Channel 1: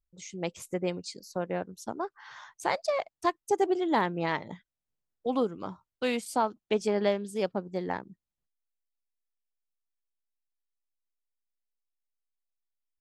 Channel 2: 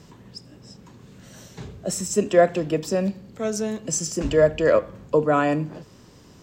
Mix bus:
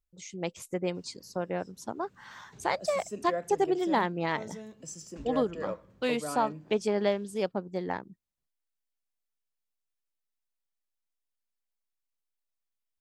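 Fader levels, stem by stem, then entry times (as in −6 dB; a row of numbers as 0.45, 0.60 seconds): −0.5, −17.5 decibels; 0.00, 0.95 seconds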